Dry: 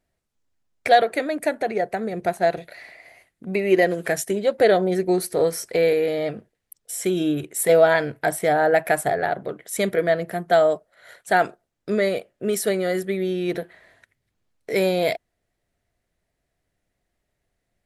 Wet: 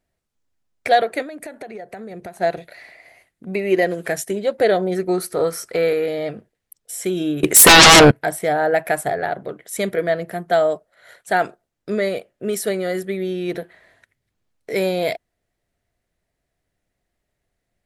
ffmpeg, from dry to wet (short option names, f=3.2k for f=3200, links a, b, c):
-filter_complex "[0:a]asettb=1/sr,asplit=3[a][b][c];[a]atrim=end=1.224[d];[b]atrim=start=1.22:end=2.37,asetpts=PTS-STARTPTS,afade=t=in:d=0.004:c=qsin,afade=t=out:st=1.146:d=0.004:c=qsin,acompressor=threshold=-30dB:ratio=10:attack=3.2:release=140:knee=1:detection=peak[e];[c]atrim=start=2.366[f];[d][e]acrossfade=d=0.004:c1=hsin:c2=qsin[g];[g][f]acrossfade=d=0.004:c1=qsin:c2=hsin,asettb=1/sr,asplit=3[h][i][j];[h]atrim=end=4.974[k];[i]atrim=start=4.97:end=6.06,asetpts=PTS-STARTPTS,afade=t=in:d=0.004:c=qsin,afade=t=out:st=1.086:d=0.004:c=qsin,equalizer=f=1.3k:t=o:w=0.3:g=12[l];[j]atrim=start=6.056[m];[k][l]acrossfade=d=0.004:c1=hsin:c2=qsin[n];[n][m]acrossfade=d=0.004:c1=qsin:c2=hsin,asettb=1/sr,asplit=3[o][p][q];[o]atrim=end=7.434[r];[p]atrim=start=7.43:end=8.11,asetpts=PTS-STARTPTS,afade=t=in:d=0.004:c=qsin,afade=t=out:st=0.676:d=0.004:c=qsin,aeval=exprs='0.631*sin(PI/2*8.91*val(0)/0.631)':c=same[s];[q]atrim=start=8.106[t];[r][s]acrossfade=d=0.004:c1=hsin:c2=qsin[u];[u][t]acrossfade=d=0.004:c1=qsin:c2=hsin"